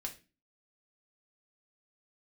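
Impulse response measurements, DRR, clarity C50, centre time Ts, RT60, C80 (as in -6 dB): 0.0 dB, 13.0 dB, 11 ms, 0.30 s, 19.5 dB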